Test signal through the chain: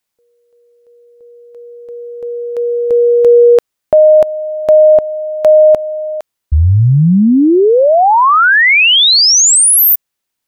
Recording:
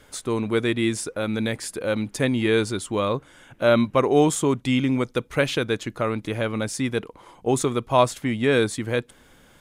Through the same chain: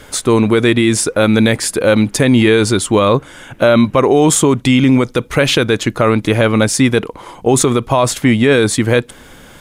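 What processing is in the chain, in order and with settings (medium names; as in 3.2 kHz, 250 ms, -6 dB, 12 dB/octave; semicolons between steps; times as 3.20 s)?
loudness maximiser +15.5 dB; trim -1 dB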